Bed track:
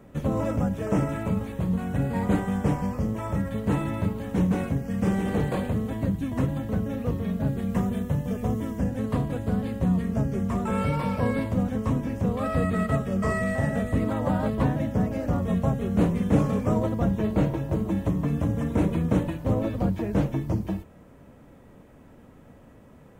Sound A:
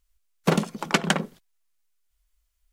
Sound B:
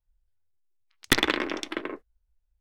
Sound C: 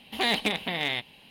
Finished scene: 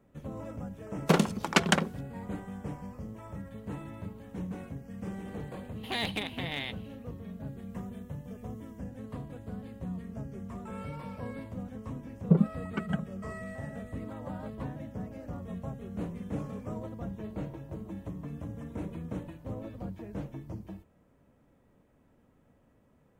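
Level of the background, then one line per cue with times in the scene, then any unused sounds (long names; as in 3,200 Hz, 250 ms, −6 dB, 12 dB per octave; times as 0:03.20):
bed track −14.5 dB
0:00.62: mix in A −2 dB
0:05.71: mix in C −7.5 dB, fades 0.10 s + parametric band 5,300 Hz −4 dB 0.27 octaves
0:11.83: mix in A −5 dB + every bin expanded away from the loudest bin 2.5 to 1
not used: B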